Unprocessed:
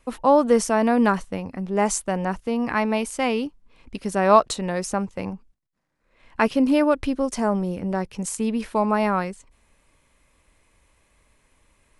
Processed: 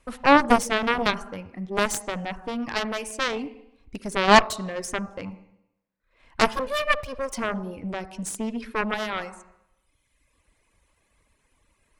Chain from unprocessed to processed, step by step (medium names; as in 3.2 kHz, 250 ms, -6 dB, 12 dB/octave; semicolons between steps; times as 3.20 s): 6.53–7.33 s: comb filter that takes the minimum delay 1.7 ms; reverb removal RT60 1.3 s; on a send at -14.5 dB: reverberation RT60 0.80 s, pre-delay 42 ms; on the sum: Chebyshev shaper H 4 -10 dB, 7 -11 dB, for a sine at -2.5 dBFS; trim -1.5 dB